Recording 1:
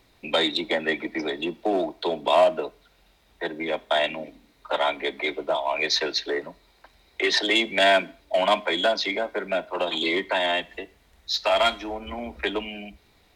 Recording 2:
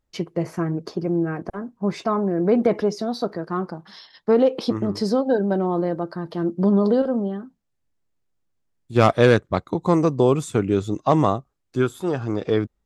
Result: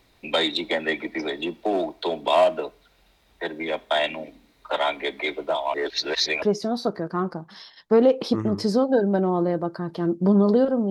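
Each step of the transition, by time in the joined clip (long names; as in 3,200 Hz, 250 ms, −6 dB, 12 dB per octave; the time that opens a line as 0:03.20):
recording 1
0:05.74–0:06.42: reverse
0:06.42: continue with recording 2 from 0:02.79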